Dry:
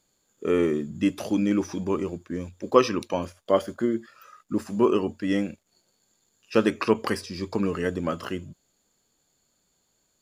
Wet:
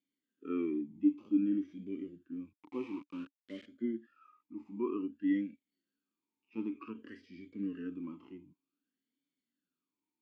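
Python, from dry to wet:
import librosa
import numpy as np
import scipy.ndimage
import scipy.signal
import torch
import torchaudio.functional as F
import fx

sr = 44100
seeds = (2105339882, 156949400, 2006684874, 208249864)

y = fx.hpss(x, sr, part='percussive', gain_db=-16)
y = fx.quant_dither(y, sr, seeds[0], bits=6, dither='none', at=(2.53, 3.66))
y = fx.air_absorb(y, sr, metres=55.0)
y = fx.vowel_sweep(y, sr, vowels='i-u', hz=0.54)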